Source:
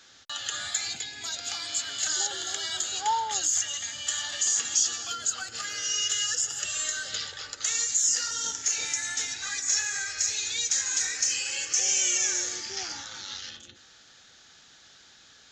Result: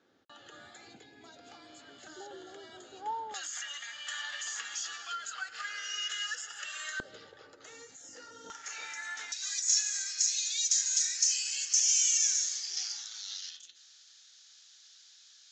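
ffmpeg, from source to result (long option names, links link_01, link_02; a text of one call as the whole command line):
ffmpeg -i in.wav -af "asetnsamples=nb_out_samples=441:pad=0,asendcmd='3.34 bandpass f 1600;7 bandpass f 390;8.5 bandpass f 1200;9.32 bandpass f 5500',bandpass=frequency=340:width_type=q:width=1.3:csg=0" out.wav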